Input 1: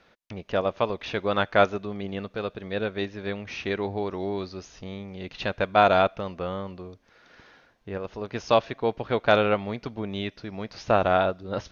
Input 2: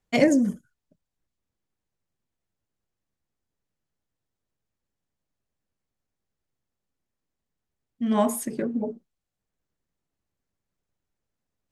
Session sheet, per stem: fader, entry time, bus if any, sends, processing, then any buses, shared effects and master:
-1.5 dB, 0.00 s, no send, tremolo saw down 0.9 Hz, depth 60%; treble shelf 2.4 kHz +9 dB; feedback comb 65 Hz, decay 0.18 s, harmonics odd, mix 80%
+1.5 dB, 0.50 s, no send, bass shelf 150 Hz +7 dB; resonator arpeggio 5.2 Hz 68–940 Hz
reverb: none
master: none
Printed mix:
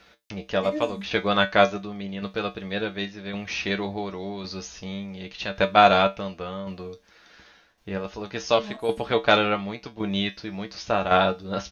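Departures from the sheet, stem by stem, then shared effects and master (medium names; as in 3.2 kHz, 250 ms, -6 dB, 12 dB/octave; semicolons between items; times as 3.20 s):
stem 1 -1.5 dB -> +9.5 dB; stem 2 +1.5 dB -> -5.5 dB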